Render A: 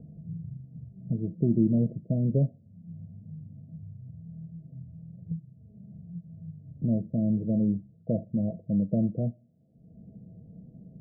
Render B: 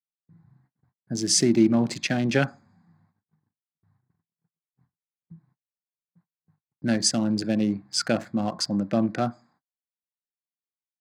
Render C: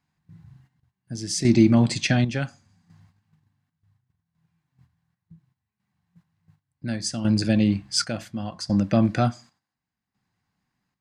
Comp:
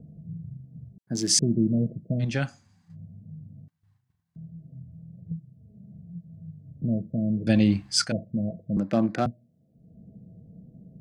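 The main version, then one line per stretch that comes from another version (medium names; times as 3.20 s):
A
0.98–1.39 s: from B
2.24–2.92 s: from C, crossfade 0.10 s
3.68–4.36 s: from C
7.47–8.12 s: from C
8.77–9.26 s: from B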